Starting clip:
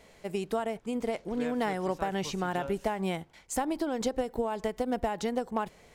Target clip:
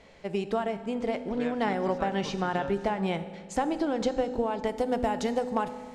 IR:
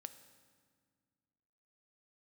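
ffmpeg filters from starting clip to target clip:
-filter_complex "[0:a]asetnsamples=nb_out_samples=441:pad=0,asendcmd='4.67 lowpass f 10000',lowpass=5000[link_01];[1:a]atrim=start_sample=2205,asetrate=43659,aresample=44100[link_02];[link_01][link_02]afir=irnorm=-1:irlink=0,volume=8dB"

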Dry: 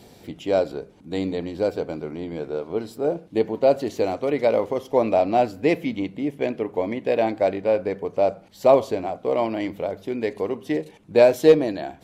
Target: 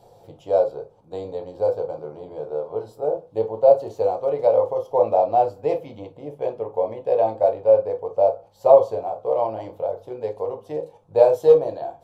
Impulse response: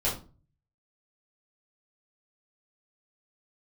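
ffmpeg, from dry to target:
-filter_complex "[0:a]equalizer=frequency=125:width_type=o:width=1:gain=6,equalizer=frequency=250:width_type=o:width=1:gain=-9,equalizer=frequency=500:width_type=o:width=1:gain=12,equalizer=frequency=1000:width_type=o:width=1:gain=11,equalizer=frequency=2000:width_type=o:width=1:gain=-10,asplit=2[link_01][link_02];[1:a]atrim=start_sample=2205,atrim=end_sample=3087,asetrate=48510,aresample=44100[link_03];[link_02][link_03]afir=irnorm=-1:irlink=0,volume=-10dB[link_04];[link_01][link_04]amix=inputs=2:normalize=0,volume=-13dB"

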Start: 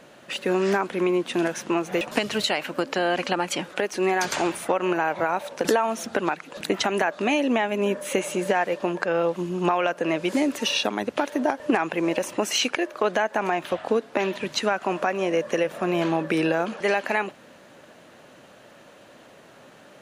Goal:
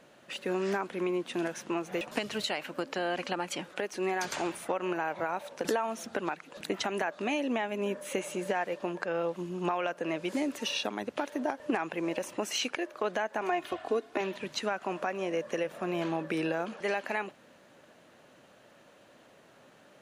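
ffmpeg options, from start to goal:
ffmpeg -i in.wav -filter_complex "[0:a]asettb=1/sr,asplit=3[link_01][link_02][link_03];[link_01]atrim=end=13.414[link_04];[link_02]atrim=start=13.41:end=14.21,asetpts=PTS-STARTPTS,afade=type=in:duration=0.004:curve=qsin,afade=type=out:start_time=0.796:duration=0.004:curve=qsin,aecho=1:1:2.8:0.66,atrim=end_sample=35280[link_05];[link_03]atrim=start=14.206[link_06];[link_04][link_05]acrossfade=duration=0.004:curve1=hsin:curve2=qsin[link_07];[link_07][link_06]acrossfade=duration=0.004:curve1=qsin:curve2=hsin,volume=-8.5dB" out.wav

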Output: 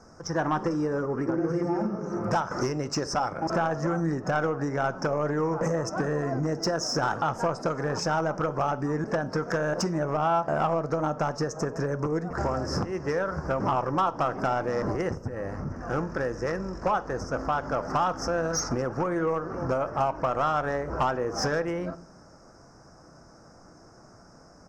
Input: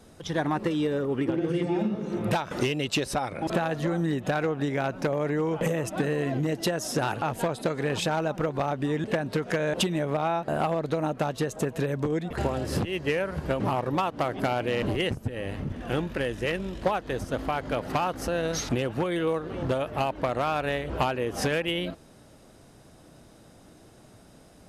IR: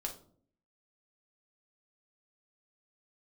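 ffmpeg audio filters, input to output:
-filter_complex "[0:a]firequalizer=gain_entry='entry(340,0);entry(1300,9);entry(3400,-30);entry(5300,13);entry(10000,-16)':delay=0.05:min_phase=1,asoftclip=type=tanh:threshold=-15.5dB,asplit=2[link_01][link_02];[1:a]atrim=start_sample=2205,asetrate=36162,aresample=44100,lowpass=5300[link_03];[link_02][link_03]afir=irnorm=-1:irlink=0,volume=-8dB[link_04];[link_01][link_04]amix=inputs=2:normalize=0,volume=-3.5dB"

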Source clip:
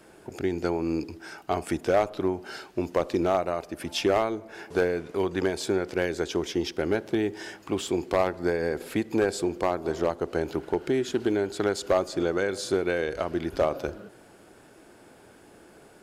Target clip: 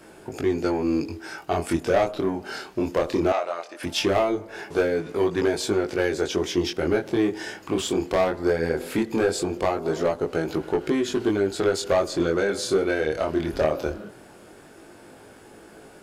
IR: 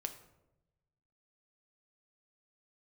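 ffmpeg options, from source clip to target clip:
-filter_complex "[0:a]asoftclip=type=tanh:threshold=-18dB,flanger=delay=18.5:depth=7.6:speed=0.19,asettb=1/sr,asplit=3[link_01][link_02][link_03];[link_01]atrim=end=3.324[link_04];[link_02]atrim=start=3.32:end=3.83,asetpts=PTS-STARTPTS,afade=type=in:duration=0.004:curve=qsin,afade=type=out:start_time=0.506:duration=0.004:curve=qsin,highpass=650,lowpass=7300[link_05];[link_03]atrim=start=3.826[link_06];[link_04][link_05]acrossfade=duration=0.004:curve1=hsin:curve2=qsin[link_07];[link_07][link_06]acrossfade=duration=0.004:curve1=qsin:curve2=hsin,volume=8dB"

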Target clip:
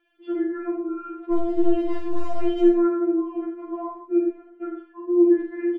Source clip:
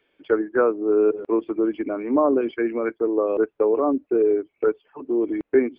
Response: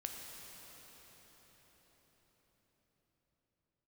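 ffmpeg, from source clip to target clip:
-filter_complex "[0:a]asettb=1/sr,asplit=3[link_01][link_02][link_03];[link_01]atrim=end=4.184[link_04];[link_02]atrim=start=4.18:end=5.38,asetpts=PTS-STARTPTS,afade=type=in:duration=0.004:curve=qsin,afade=type=out:start_time=1.196:duration=0.004:curve=qsin,bass=frequency=250:gain=6,treble=frequency=4000:gain=-15[link_05];[link_03]atrim=start=5.376[link_06];[link_04][link_05]acrossfade=duration=0.004:curve1=hsin:curve2=qsin[link_07];[link_07][link_06]acrossfade=duration=0.004:curve1=qsin:curve2=hsin,alimiter=limit=-17dB:level=0:latency=1:release=11,asettb=1/sr,asplit=3[link_08][link_09][link_10];[link_08]atrim=end=1.324[link_11];[link_09]atrim=start=1.32:end=2.64,asetpts=PTS-STARTPTS,afade=type=in:duration=0.004:curve=qsin,afade=type=out:start_time=1.316:duration=0.004:curve=qsin,aeval=exprs='clip(val(0),-1,0.0158)':channel_layout=same[link_12];[link_10]atrim=start=2.636[link_13];[link_11][link_12]acrossfade=duration=0.004:curve1=hsin:curve2=qsin[link_14];[link_14][link_13]acrossfade=duration=0.004:curve1=qsin:curve2=hsin,aecho=1:1:46|74:0.631|0.447[link_15];[1:a]atrim=start_sample=2205,atrim=end_sample=6174[link_16];[link_15][link_16]afir=irnorm=-1:irlink=0,afftfilt=real='re*4*eq(mod(b,16),0)':imag='im*4*eq(mod(b,16),0)':win_size=2048:overlap=0.75,volume=3dB"

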